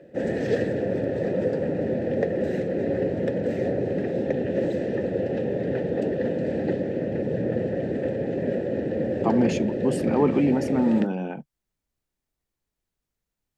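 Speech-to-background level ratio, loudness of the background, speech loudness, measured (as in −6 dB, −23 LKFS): 2.5 dB, −26.5 LKFS, −24.0 LKFS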